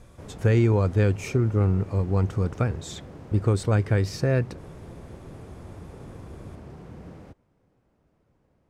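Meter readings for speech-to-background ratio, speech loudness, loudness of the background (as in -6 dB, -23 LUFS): 19.5 dB, -24.0 LUFS, -43.5 LUFS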